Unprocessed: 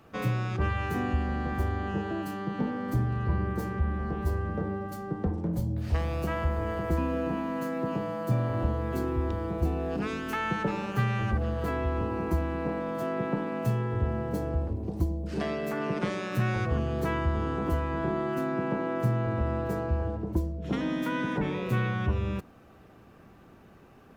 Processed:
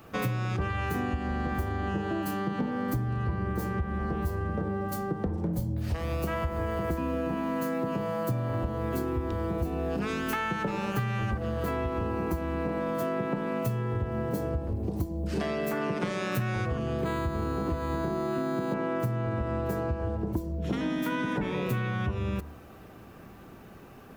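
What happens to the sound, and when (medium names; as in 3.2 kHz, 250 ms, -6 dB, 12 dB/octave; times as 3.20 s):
17.01–18.74 s: decimation joined by straight lines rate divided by 8×
whole clip: treble shelf 11 kHz +10 dB; de-hum 75.11 Hz, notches 28; compression, threshold -32 dBFS; trim +5.5 dB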